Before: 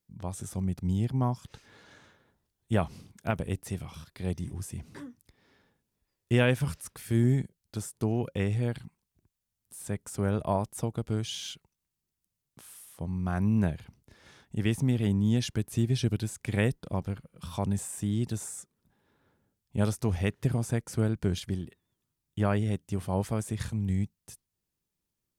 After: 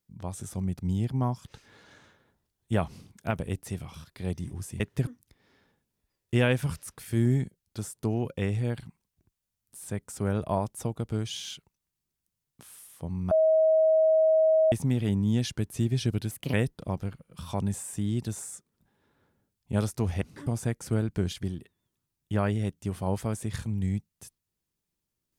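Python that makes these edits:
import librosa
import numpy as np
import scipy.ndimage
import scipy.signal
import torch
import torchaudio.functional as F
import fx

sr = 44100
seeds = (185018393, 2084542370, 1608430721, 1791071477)

y = fx.edit(x, sr, fx.swap(start_s=4.8, length_s=0.25, other_s=20.26, other_length_s=0.27),
    fx.bleep(start_s=13.29, length_s=1.41, hz=636.0, db=-18.0),
    fx.speed_span(start_s=16.29, length_s=0.29, speed=1.29), tone=tone)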